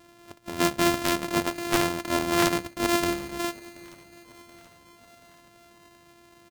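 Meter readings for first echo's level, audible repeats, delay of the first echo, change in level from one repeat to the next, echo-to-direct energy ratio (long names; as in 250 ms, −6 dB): −22.0 dB, 3, 729 ms, −4.5 dB, −20.5 dB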